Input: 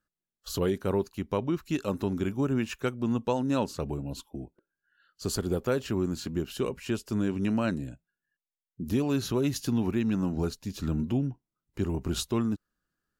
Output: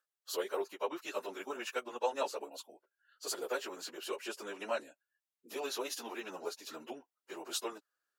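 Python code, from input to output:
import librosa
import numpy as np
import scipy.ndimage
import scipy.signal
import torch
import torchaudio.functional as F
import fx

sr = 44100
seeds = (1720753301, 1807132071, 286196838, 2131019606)

y = scipy.signal.sosfilt(scipy.signal.butter(4, 480.0, 'highpass', fs=sr, output='sos'), x)
y = fx.stretch_vocoder_free(y, sr, factor=0.62)
y = y * librosa.db_to_amplitude(1.5)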